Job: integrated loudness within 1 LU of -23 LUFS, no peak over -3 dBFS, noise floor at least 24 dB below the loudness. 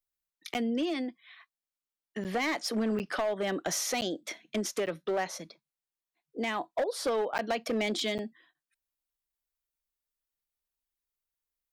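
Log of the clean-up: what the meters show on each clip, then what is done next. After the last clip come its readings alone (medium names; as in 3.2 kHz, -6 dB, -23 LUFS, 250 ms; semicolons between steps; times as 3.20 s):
clipped samples 1.5%; clipping level -24.5 dBFS; dropouts 7; longest dropout 9.0 ms; loudness -32.0 LUFS; peak level -24.5 dBFS; loudness target -23.0 LUFS
-> clip repair -24.5 dBFS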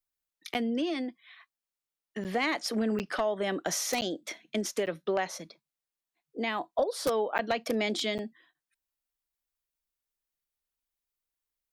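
clipped samples 0.0%; dropouts 7; longest dropout 9.0 ms
-> interpolate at 0.54/2.24/2.99/4.01/4.86/7.38/8.18 s, 9 ms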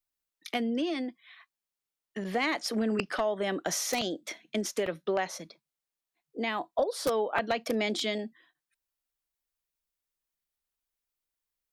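dropouts 0; loudness -31.0 LUFS; peak level -13.5 dBFS; loudness target -23.0 LUFS
-> trim +8 dB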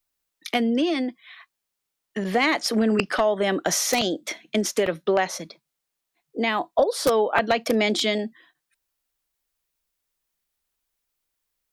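loudness -23.0 LUFS; peak level -5.5 dBFS; noise floor -82 dBFS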